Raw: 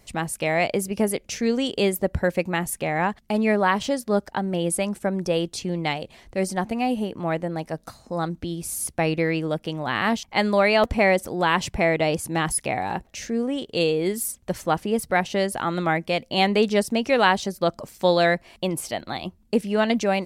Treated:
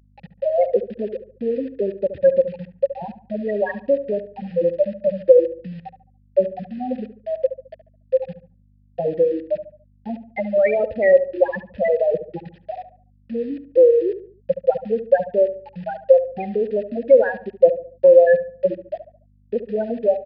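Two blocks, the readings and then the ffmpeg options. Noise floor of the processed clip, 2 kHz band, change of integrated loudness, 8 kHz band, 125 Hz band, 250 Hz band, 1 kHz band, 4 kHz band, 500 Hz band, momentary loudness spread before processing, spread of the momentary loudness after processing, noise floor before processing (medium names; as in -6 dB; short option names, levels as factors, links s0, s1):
-56 dBFS, -7.5 dB, +4.0 dB, under -40 dB, -9.0 dB, -5.5 dB, -7.5 dB, under -20 dB, +7.0 dB, 9 LU, 17 LU, -58 dBFS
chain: -filter_complex "[0:a]afftfilt=real='re*gte(hypot(re,im),0.501)':imag='im*gte(hypot(re,im),0.501)':win_size=1024:overlap=0.75,highpass=f=65:p=1,bass=f=250:g=11,treble=f=4000:g=-8,acompressor=threshold=0.0794:ratio=4,acrusher=bits=7:mix=0:aa=0.000001,apsyclip=8.91,asplit=3[s0][s1][s2];[s0]bandpass=f=530:t=q:w=8,volume=1[s3];[s1]bandpass=f=1840:t=q:w=8,volume=0.501[s4];[s2]bandpass=f=2480:t=q:w=8,volume=0.355[s5];[s3][s4][s5]amix=inputs=3:normalize=0,aeval=exprs='val(0)+0.00224*(sin(2*PI*50*n/s)+sin(2*PI*2*50*n/s)/2+sin(2*PI*3*50*n/s)/3+sin(2*PI*4*50*n/s)/4+sin(2*PI*5*50*n/s)/5)':c=same,asplit=2[s6][s7];[s7]adelay=71,lowpass=f=1300:p=1,volume=0.282,asplit=2[s8][s9];[s9]adelay=71,lowpass=f=1300:p=1,volume=0.41,asplit=2[s10][s11];[s11]adelay=71,lowpass=f=1300:p=1,volume=0.41,asplit=2[s12][s13];[s13]adelay=71,lowpass=f=1300:p=1,volume=0.41[s14];[s8][s10][s12][s14]amix=inputs=4:normalize=0[s15];[s6][s15]amix=inputs=2:normalize=0,aresample=11025,aresample=44100,volume=0.891"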